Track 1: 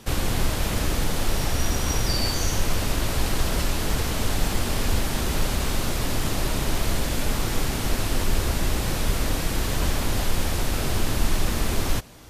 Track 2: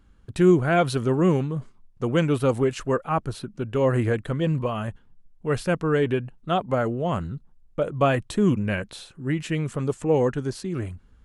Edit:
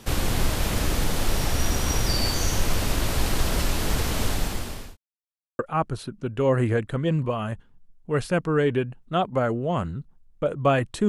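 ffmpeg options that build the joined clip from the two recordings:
ffmpeg -i cue0.wav -i cue1.wav -filter_complex "[0:a]apad=whole_dur=11.08,atrim=end=11.08,asplit=2[link_01][link_02];[link_01]atrim=end=4.97,asetpts=PTS-STARTPTS,afade=type=out:start_time=4.23:duration=0.74[link_03];[link_02]atrim=start=4.97:end=5.59,asetpts=PTS-STARTPTS,volume=0[link_04];[1:a]atrim=start=2.95:end=8.44,asetpts=PTS-STARTPTS,afade=type=in:duration=0.004:curve=hsin[link_05];[link_03][link_04][link_05]concat=n=3:v=0:a=1" out.wav

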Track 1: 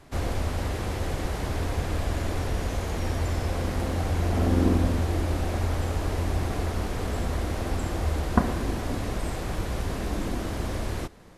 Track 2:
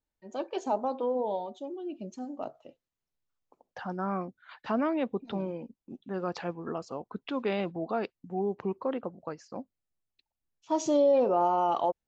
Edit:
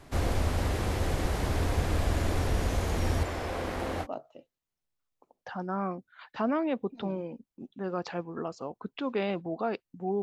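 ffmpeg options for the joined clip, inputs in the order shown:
ffmpeg -i cue0.wav -i cue1.wav -filter_complex "[0:a]asettb=1/sr,asplit=3[link_01][link_02][link_03];[link_01]atrim=end=3.234[link_04];[link_02]atrim=start=3.23:end=4.07,asetpts=PTS-STARTPTS,afade=type=in:duration=0.004:curve=qsin,afade=type=out:start_time=0.836:duration=0.004:curve=qsin,bass=frequency=250:gain=-11,treble=frequency=4000:gain=-7[link_05];[link_03]atrim=start=4.066[link_06];[link_04][link_05]acrossfade=duration=0.004:curve1=hsin:curve2=qsin[link_07];[link_07][link_06]acrossfade=duration=0.004:curve1=qsin:curve2=hsin,apad=whole_dur=10.22,atrim=end=10.22,atrim=end=4.07,asetpts=PTS-STARTPTS[link_08];[1:a]atrim=start=2.31:end=8.52,asetpts=PTS-STARTPTS[link_09];[link_08][link_09]acrossfade=duration=0.06:curve1=tri:curve2=tri" out.wav

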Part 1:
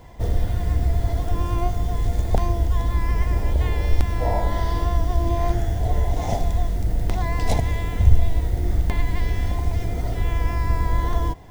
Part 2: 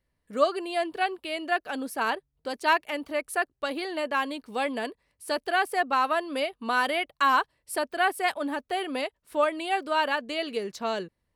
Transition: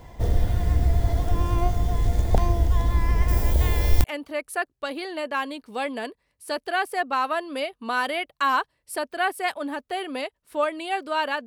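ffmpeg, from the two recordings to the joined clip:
ffmpeg -i cue0.wav -i cue1.wav -filter_complex "[0:a]asettb=1/sr,asplit=3[link_01][link_02][link_03];[link_01]atrim=end=3.284[link_04];[link_02]atrim=start=3.28:end=4.04,asetpts=PTS-STARTPTS,afade=type=in:duration=0.004:curve=qsin,afade=type=out:start_time=0.756:duration=0.004:curve=qsin,aemphasis=mode=production:type=50kf[link_05];[link_03]atrim=start=4.036[link_06];[link_04][link_05]acrossfade=duration=0.004:curve1=hsin:curve2=qsin[link_07];[link_07][link_06]acrossfade=duration=0.004:curve1=qsin:curve2=hsin,apad=whole_dur=11.46,atrim=end=11.46,atrim=end=4.042[link_08];[1:a]atrim=start=2.838:end=10.26[link_09];[link_08][link_09]acrossfade=duration=0.004:curve1=hsin:curve2=hsin" out.wav

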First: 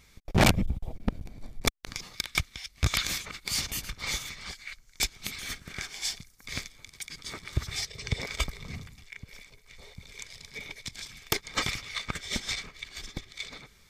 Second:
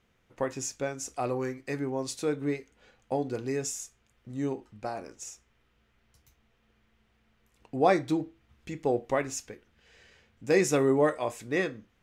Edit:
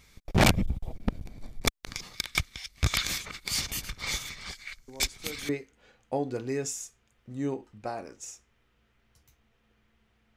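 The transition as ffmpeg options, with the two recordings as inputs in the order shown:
ffmpeg -i cue0.wav -i cue1.wav -filter_complex "[1:a]asplit=2[link_01][link_02];[0:a]apad=whole_dur=10.36,atrim=end=10.36,atrim=end=5.492[link_03];[link_02]atrim=start=2.478:end=7.35[link_04];[link_01]atrim=start=1.87:end=2.48,asetpts=PTS-STARTPTS,volume=-13.5dB,afade=type=in:duration=0.004:curve=hsin,afade=type=out:start_time=0.606:duration=0.004:curve=hsin,adelay=4880[link_05];[link_03][link_04]acrossfade=duration=0.004:curve1=hsin:curve2=hsin[link_06];[link_06][link_05]amix=inputs=2:normalize=0" out.wav

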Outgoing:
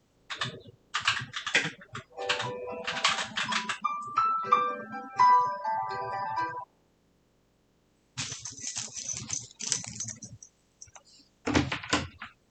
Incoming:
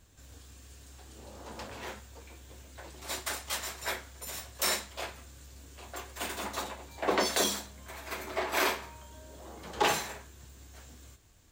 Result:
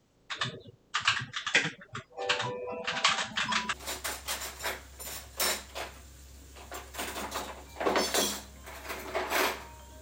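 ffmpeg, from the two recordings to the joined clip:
ffmpeg -i cue0.wav -i cue1.wav -filter_complex "[1:a]asplit=2[link_01][link_02];[0:a]apad=whole_dur=10.01,atrim=end=10.01,atrim=end=3.732[link_03];[link_02]atrim=start=2.948:end=9.23[link_04];[link_01]atrim=start=2.54:end=2.95,asetpts=PTS-STARTPTS,volume=-6dB,afade=type=in:duration=0.004:curve=hsin,afade=type=out:start_time=0.406:duration=0.004:curve=hsin,adelay=3320[link_05];[link_03][link_04]acrossfade=duration=0.004:curve1=hsin:curve2=hsin[link_06];[link_06][link_05]amix=inputs=2:normalize=0" out.wav

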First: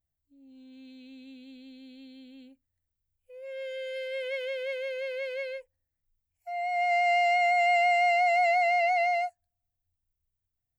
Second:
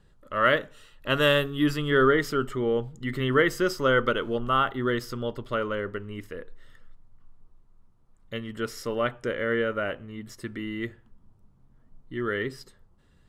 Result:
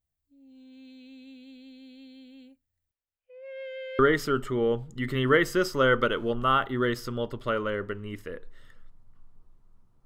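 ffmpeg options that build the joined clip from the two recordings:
ffmpeg -i cue0.wav -i cue1.wav -filter_complex "[0:a]asettb=1/sr,asplit=3[link_01][link_02][link_03];[link_01]atrim=end=2.914[link_04];[link_02]atrim=start=2.91:end=3.99,asetpts=PTS-STARTPTS,afade=type=in:duration=0.004:curve=qsin,afade=type=out:start_time=1.076:duration=0.004:curve=qsin,acrossover=split=360 3600:gain=0.1 1 0.1[link_05][link_06][link_07];[link_05][link_06][link_07]amix=inputs=3:normalize=0[link_08];[link_03]atrim=start=3.986[link_09];[link_04][link_08]acrossfade=duration=0.004:curve1=hsin:curve2=qsin[link_10];[link_10][link_09]acrossfade=duration=0.004:curve1=qsin:curve2=hsin,apad=whole_dur=10.05,atrim=end=10.05,atrim=end=3.992[link_11];[1:a]atrim=start=2.038:end=8.1[link_12];[link_11][link_12]acrossfade=duration=0.004:curve1=hsin:curve2=hsin" out.wav

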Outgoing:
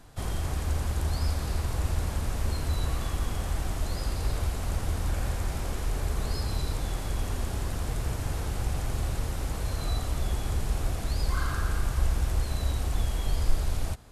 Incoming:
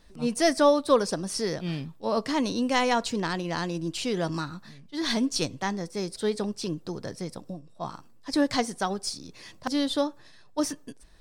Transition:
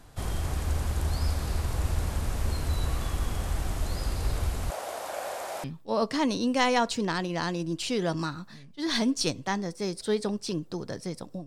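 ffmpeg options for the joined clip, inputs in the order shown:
ffmpeg -i cue0.wav -i cue1.wav -filter_complex "[0:a]asettb=1/sr,asplit=3[link_01][link_02][link_03];[link_01]atrim=end=4.704[link_04];[link_02]atrim=start=4.7:end=5.64,asetpts=PTS-STARTPTS,afade=type=in:duration=0.004:curve=qsin,afade=type=out:start_time=0.936:duration=0.004:curve=qsin,highpass=frequency=620:width_type=q:width=3.4[link_05];[link_03]atrim=start=5.636[link_06];[link_04][link_05]acrossfade=duration=0.004:curve1=hsin:curve2=qsin[link_07];[link_07][link_06]acrossfade=duration=0.004:curve1=qsin:curve2=hsin,apad=whole_dur=11.46,atrim=end=11.46,atrim=end=5.642[link_08];[1:a]atrim=start=1.788:end=7.61[link_09];[link_08][link_09]acrossfade=duration=0.004:curve1=hsin:curve2=hsin" out.wav

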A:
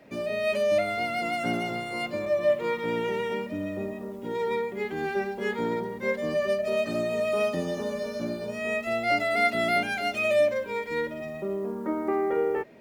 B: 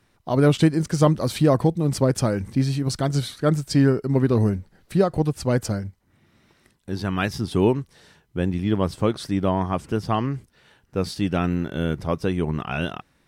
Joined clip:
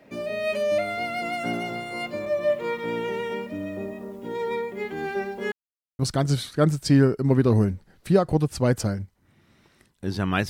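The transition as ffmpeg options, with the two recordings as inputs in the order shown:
ffmpeg -i cue0.wav -i cue1.wav -filter_complex "[0:a]apad=whole_dur=10.49,atrim=end=10.49,asplit=2[link_01][link_02];[link_01]atrim=end=5.52,asetpts=PTS-STARTPTS,afade=type=out:start_time=5.516:duration=0.004:curve=hsin[link_03];[link_02]atrim=start=5.52:end=5.99,asetpts=PTS-STARTPTS,volume=0[link_04];[1:a]atrim=start=2.84:end=7.34,asetpts=PTS-STARTPTS,afade=type=in:duration=0.004:curve=hsin[link_05];[link_03][link_04][link_05]concat=n=3:v=0:a=1" out.wav

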